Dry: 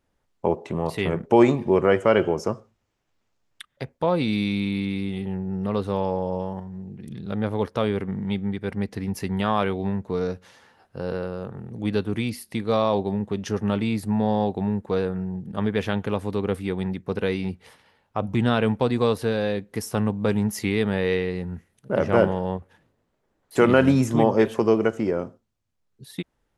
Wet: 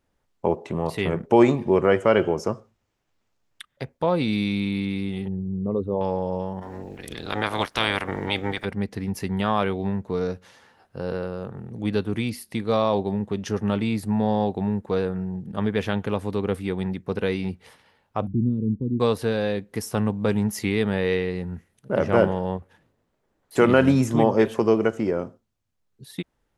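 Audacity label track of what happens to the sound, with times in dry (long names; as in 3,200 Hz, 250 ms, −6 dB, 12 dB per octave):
5.280000	6.010000	spectral envelope exaggerated exponent 2
6.610000	8.640000	ceiling on every frequency bin ceiling under each frame's peak by 26 dB
18.270000	19.000000	inverse Chebyshev low-pass filter stop band from 660 Hz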